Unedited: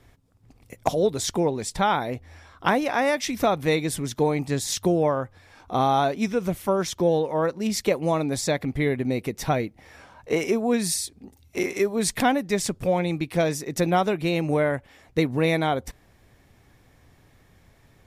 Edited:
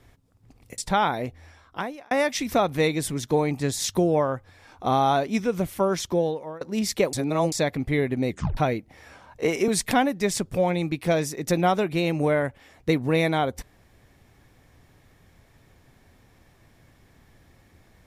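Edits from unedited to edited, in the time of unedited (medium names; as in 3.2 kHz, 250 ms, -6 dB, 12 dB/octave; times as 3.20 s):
0.78–1.66 s: delete
2.16–2.99 s: fade out
6.95–7.49 s: fade out, to -23.5 dB
8.01–8.40 s: reverse
9.17 s: tape stop 0.28 s
10.56–11.97 s: delete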